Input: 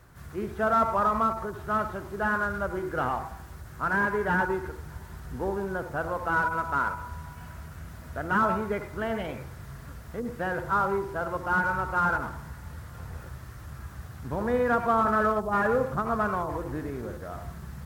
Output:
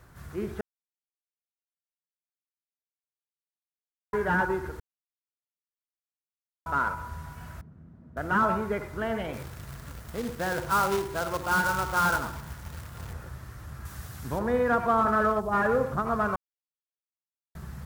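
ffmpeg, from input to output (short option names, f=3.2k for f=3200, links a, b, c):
-filter_complex "[0:a]asettb=1/sr,asplit=3[a][b][c];[a]atrim=end=7.614[d];[b]atrim=start=7.61:end=8.17,asetpts=PTS-STARTPTS,afade=t=in:d=0.004:c=qsin,afade=t=out:st=0.556:d=0.004:c=qsin,bandpass=f=220:t=q:w=1.7[e];[c]atrim=start=8.166[f];[d][e]acrossfade=d=0.004:c1=hsin:c2=qsin[g];[g][f]acrossfade=d=0.004:c1=qsin:c2=hsin,asettb=1/sr,asplit=3[h][i][j];[h]atrim=end=9.334[k];[i]atrim=start=9.33:end=13.13,asetpts=PTS-STARTPTS,afade=t=in:d=0.004:c=qsin,afade=t=out:st=3.796:d=0.004:c=qsin,acrusher=bits=2:mode=log:mix=0:aa=0.000001[l];[j]atrim=start=13.126[m];[k][l]acrossfade=d=0.004:c1=hsin:c2=qsin[n];[n][m]acrossfade=d=0.004:c1=qsin:c2=hsin,asettb=1/sr,asplit=3[o][p][q];[o]atrim=end=13.854[r];[p]atrim=start=13.85:end=14.39,asetpts=PTS-STARTPTS,afade=t=in:d=0.004:c=qsin,afade=t=out:st=0.536:d=0.004:c=qsin,highshelf=f=2.8k:g=10.5[s];[q]atrim=start=14.386[t];[r][s]acrossfade=d=0.004:c1=hsin:c2=qsin[u];[u][t]acrossfade=d=0.004:c1=qsin:c2=hsin,asplit=7[v][w][x][y][z][aa][ab];[v]atrim=end=0.61,asetpts=PTS-STARTPTS,afade=t=out:st=0.606:d=0.004:c=hsin[ac];[w]atrim=start=0.61:end=4.13,asetpts=PTS-STARTPTS,volume=0[ad];[x]atrim=start=4.13:end=4.8,asetpts=PTS-STARTPTS,afade=t=in:d=0.004:c=hsin,afade=t=out:st=0.666:d=0.004:c=hsin[ae];[y]atrim=start=4.8:end=6.66,asetpts=PTS-STARTPTS,volume=0[af];[z]atrim=start=6.66:end=16.36,asetpts=PTS-STARTPTS,afade=t=in:d=0.004:c=hsin,afade=t=out:st=9.696:d=0.004:c=hsin[ag];[aa]atrim=start=16.36:end=17.55,asetpts=PTS-STARTPTS,volume=0[ah];[ab]atrim=start=17.55,asetpts=PTS-STARTPTS,afade=t=in:d=0.004:c=hsin[ai];[ac][ad][ae][af][ag][ah][ai]concat=n=7:v=0:a=1"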